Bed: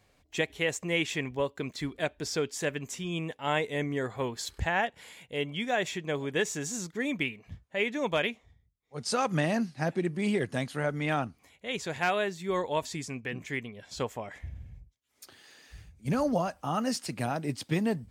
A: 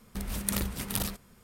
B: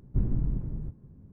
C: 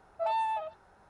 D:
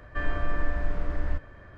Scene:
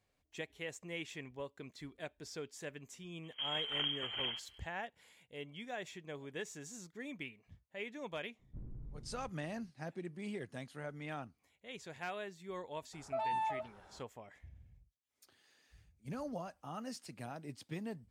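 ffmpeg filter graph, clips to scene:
ffmpeg -i bed.wav -i cue0.wav -i cue1.wav -i cue2.wav -filter_complex "[0:a]volume=-14.5dB[link_01];[1:a]lowpass=frequency=2800:width_type=q:width=0.5098,lowpass=frequency=2800:width_type=q:width=0.6013,lowpass=frequency=2800:width_type=q:width=0.9,lowpass=frequency=2800:width_type=q:width=2.563,afreqshift=-3300[link_02];[2:a]asoftclip=type=tanh:threshold=-24dB[link_03];[3:a]alimiter=level_in=6.5dB:limit=-24dB:level=0:latency=1:release=146,volume=-6.5dB[link_04];[link_02]atrim=end=1.43,asetpts=PTS-STARTPTS,volume=-5dB,afade=type=in:duration=0.004:curve=hsin,afade=type=out:start_time=1.426:duration=0.004:curve=hsin,adelay=3230[link_05];[link_03]atrim=end=1.32,asetpts=PTS-STARTPTS,volume=-17dB,afade=type=in:duration=0.004:curve=hsin,afade=type=out:start_time=1.316:duration=0.004:curve=hsin,adelay=8390[link_06];[link_04]atrim=end=1.09,asetpts=PTS-STARTPTS,afade=type=in:duration=0.004:curve=hsin,afade=type=out:start_time=1.086:duration=0.004:curve=hsin,adelay=12930[link_07];[link_01][link_05][link_06][link_07]amix=inputs=4:normalize=0" out.wav

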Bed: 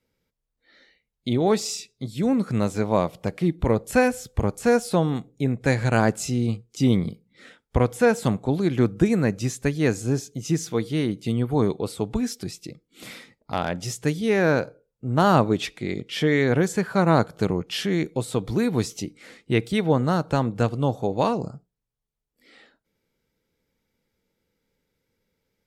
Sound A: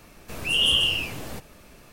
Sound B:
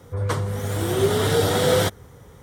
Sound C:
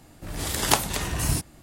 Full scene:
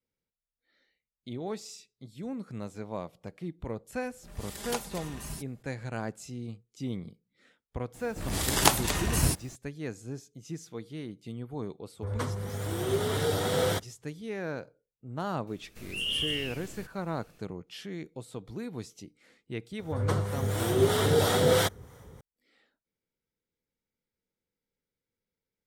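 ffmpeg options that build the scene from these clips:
ffmpeg -i bed.wav -i cue0.wav -i cue1.wav -i cue2.wav -filter_complex "[3:a]asplit=2[link_01][link_02];[2:a]asplit=2[link_03][link_04];[0:a]volume=-15.5dB[link_05];[link_01]aecho=1:1:5:0.65[link_06];[link_02]acrusher=bits=9:mix=0:aa=0.000001[link_07];[link_03]agate=range=-33dB:threshold=-34dB:ratio=3:release=100:detection=peak[link_08];[1:a]equalizer=frequency=840:width_type=o:width=1.3:gain=-9.5[link_09];[link_04]acrossover=split=610[link_10][link_11];[link_10]aeval=exprs='val(0)*(1-0.5/2+0.5/2*cos(2*PI*3*n/s))':channel_layout=same[link_12];[link_11]aeval=exprs='val(0)*(1-0.5/2-0.5/2*cos(2*PI*3*n/s))':channel_layout=same[link_13];[link_12][link_13]amix=inputs=2:normalize=0[link_14];[link_06]atrim=end=1.62,asetpts=PTS-STARTPTS,volume=-15.5dB,afade=type=in:duration=0.004:curve=hsin,afade=type=out:start_time=1.616:duration=0.004:curve=hsin,adelay=176841S[link_15];[link_07]atrim=end=1.62,asetpts=PTS-STARTPTS,volume=-1dB,afade=type=in:duration=0.004:curve=hsin,afade=type=out:start_time=1.616:duration=0.004:curve=hsin,adelay=350154S[link_16];[link_08]atrim=end=2.42,asetpts=PTS-STARTPTS,volume=-8.5dB,afade=type=in:duration=0.004:curve=hsin,afade=type=out:start_time=2.416:duration=0.004:curve=hsin,adelay=11900[link_17];[link_09]atrim=end=1.92,asetpts=PTS-STARTPTS,volume=-9.5dB,afade=type=in:duration=0.004:curve=hsin,afade=type=out:start_time=1.916:duration=0.004:curve=hsin,adelay=15470[link_18];[link_14]atrim=end=2.42,asetpts=PTS-STARTPTS,volume=-2dB,afade=type=in:duration=0.004:curve=hsin,afade=type=out:start_time=2.416:duration=0.004:curve=hsin,adelay=19790[link_19];[link_05][link_15][link_16][link_17][link_18][link_19]amix=inputs=6:normalize=0" out.wav

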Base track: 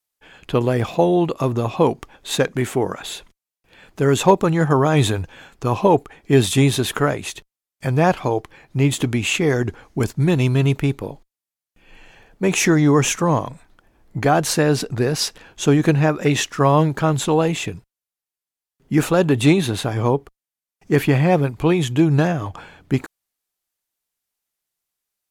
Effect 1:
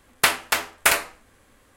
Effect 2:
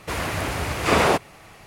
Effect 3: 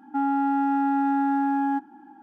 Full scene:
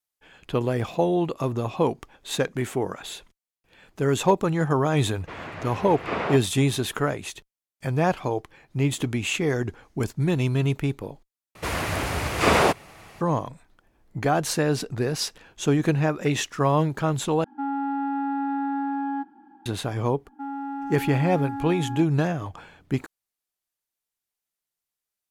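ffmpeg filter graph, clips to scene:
ffmpeg -i bed.wav -i cue0.wav -i cue1.wav -i cue2.wav -filter_complex "[2:a]asplit=2[link_01][link_02];[3:a]asplit=2[link_03][link_04];[0:a]volume=-6dB[link_05];[link_01]highpass=110,lowpass=2800[link_06];[link_03]aresample=11025,aresample=44100[link_07];[link_05]asplit=3[link_08][link_09][link_10];[link_08]atrim=end=11.554[link_11];[link_02]atrim=end=1.66,asetpts=PTS-STARTPTS,volume=-0.5dB[link_12];[link_09]atrim=start=13.206:end=17.444[link_13];[link_07]atrim=end=2.22,asetpts=PTS-STARTPTS,volume=-4dB[link_14];[link_10]atrim=start=19.656[link_15];[link_06]atrim=end=1.66,asetpts=PTS-STARTPTS,volume=-9dB,afade=type=in:duration=0.004:curve=hsin,afade=type=out:start_time=1.656:duration=0.004:curve=hsin,adelay=5200[link_16];[link_04]atrim=end=2.22,asetpts=PTS-STARTPTS,volume=-9dB,afade=type=in:duration=0.004:curve=hsin,afade=type=out:start_time=2.216:duration=0.004:curve=hsin,adelay=20250[link_17];[link_11][link_12]acrossfade=duration=0.004:curve1=hsin:curve2=hsin[link_18];[link_18][link_13]acrossfade=duration=0.004:curve1=hsin:curve2=hsin[link_19];[link_19][link_14]acrossfade=duration=0.004:curve1=hsin:curve2=hsin[link_20];[link_20][link_15]acrossfade=duration=0.004:curve1=hsin:curve2=hsin[link_21];[link_21][link_16][link_17]amix=inputs=3:normalize=0" out.wav

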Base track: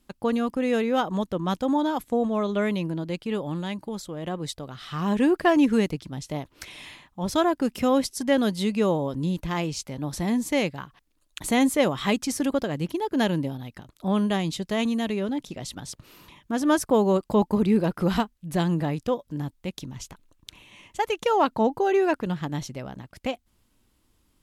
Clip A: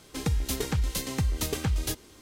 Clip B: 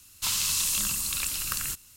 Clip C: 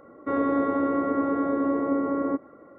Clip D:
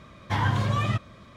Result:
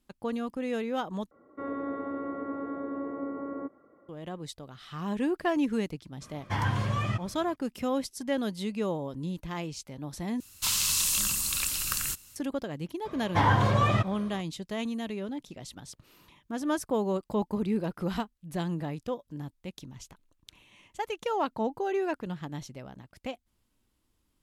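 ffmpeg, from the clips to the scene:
ffmpeg -i bed.wav -i cue0.wav -i cue1.wav -i cue2.wav -i cue3.wav -filter_complex "[4:a]asplit=2[link_01][link_02];[0:a]volume=-8dB[link_03];[link_01]bandreject=frequency=3800:width=7.3[link_04];[link_02]equalizer=frequency=610:width_type=o:width=2.2:gain=7.5[link_05];[link_03]asplit=3[link_06][link_07][link_08];[link_06]atrim=end=1.314[link_09];[3:a]atrim=end=2.78,asetpts=PTS-STARTPTS,volume=-10.5dB[link_10];[link_07]atrim=start=4.086:end=10.404[link_11];[2:a]atrim=end=1.96[link_12];[link_08]atrim=start=12.356[link_13];[link_04]atrim=end=1.36,asetpts=PTS-STARTPTS,volume=-4dB,afade=type=in:duration=0.02,afade=type=out:start_time=1.34:duration=0.02,adelay=6200[link_14];[link_05]atrim=end=1.36,asetpts=PTS-STARTPTS,volume=-1dB,afade=type=in:duration=0.004:curve=hsin,afade=type=out:start_time=1.356:duration=0.004:curve=hsin,adelay=13050[link_15];[link_09][link_10]acrossfade=duration=0.004:curve1=hsin:curve2=hsin[link_16];[link_16][link_11]acrossfade=duration=0.004:curve1=hsin:curve2=hsin[link_17];[link_17][link_12]acrossfade=duration=0.004:curve1=hsin:curve2=hsin[link_18];[link_18][link_13]acrossfade=duration=0.004:curve1=hsin:curve2=hsin[link_19];[link_19][link_14][link_15]amix=inputs=3:normalize=0" out.wav

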